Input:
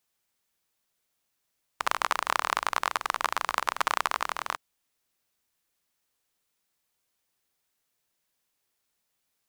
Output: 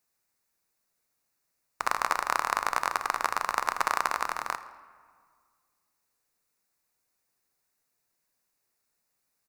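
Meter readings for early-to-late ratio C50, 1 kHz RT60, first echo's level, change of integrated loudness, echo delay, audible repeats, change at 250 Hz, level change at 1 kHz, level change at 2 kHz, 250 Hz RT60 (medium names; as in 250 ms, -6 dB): 13.0 dB, 1.9 s, -19.0 dB, 0.0 dB, 82 ms, 2, +0.5 dB, +0.5 dB, -0.5 dB, 2.1 s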